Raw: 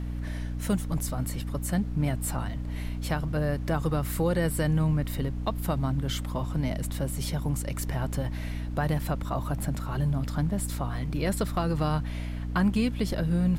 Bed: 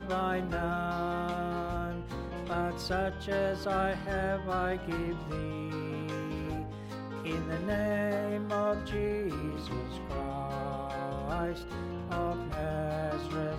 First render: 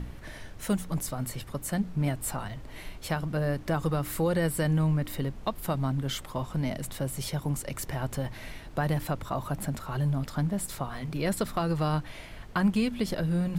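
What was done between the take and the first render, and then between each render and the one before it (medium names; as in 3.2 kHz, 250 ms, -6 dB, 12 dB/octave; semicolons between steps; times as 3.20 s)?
de-hum 60 Hz, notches 5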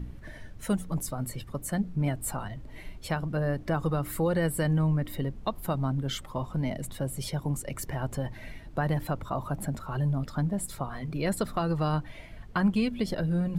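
noise reduction 9 dB, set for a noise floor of -44 dBFS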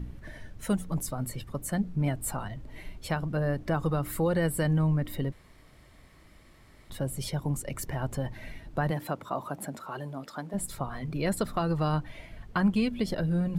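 5.32–6.90 s: room tone; 8.90–10.53 s: high-pass 170 Hz -> 390 Hz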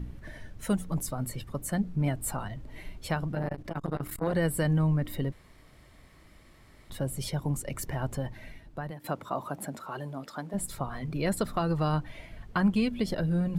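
3.33–4.34 s: transformer saturation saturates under 460 Hz; 8.06–9.04 s: fade out linear, to -14 dB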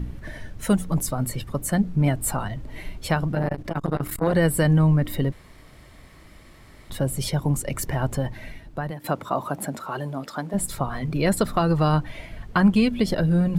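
trim +7.5 dB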